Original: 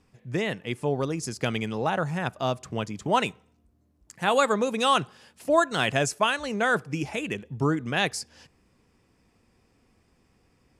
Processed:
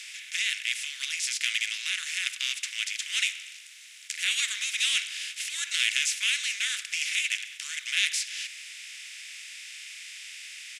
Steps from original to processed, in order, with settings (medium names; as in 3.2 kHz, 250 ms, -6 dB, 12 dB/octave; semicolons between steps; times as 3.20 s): spectral levelling over time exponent 0.4; harmony voices -3 st -8 dB; elliptic high-pass 2.1 kHz, stop band 60 dB